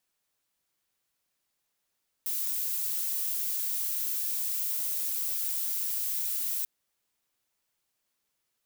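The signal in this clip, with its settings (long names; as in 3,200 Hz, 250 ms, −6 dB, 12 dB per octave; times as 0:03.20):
noise violet, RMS −31 dBFS 4.39 s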